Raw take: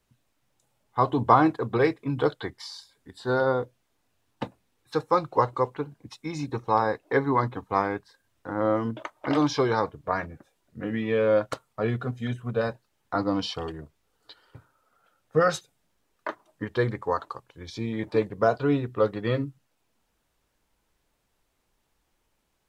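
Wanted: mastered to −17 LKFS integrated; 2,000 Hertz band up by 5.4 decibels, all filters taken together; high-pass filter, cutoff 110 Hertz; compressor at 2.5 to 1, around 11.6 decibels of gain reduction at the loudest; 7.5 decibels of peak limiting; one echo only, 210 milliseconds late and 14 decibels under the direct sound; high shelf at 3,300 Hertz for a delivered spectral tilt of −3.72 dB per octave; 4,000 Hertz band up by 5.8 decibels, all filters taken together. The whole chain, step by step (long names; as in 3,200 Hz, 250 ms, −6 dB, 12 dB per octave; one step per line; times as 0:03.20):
high-pass filter 110 Hz
parametric band 2,000 Hz +7 dB
high-shelf EQ 3,300 Hz −5 dB
parametric band 4,000 Hz +8.5 dB
downward compressor 2.5 to 1, threshold −29 dBFS
brickwall limiter −20.5 dBFS
single-tap delay 210 ms −14 dB
level +17 dB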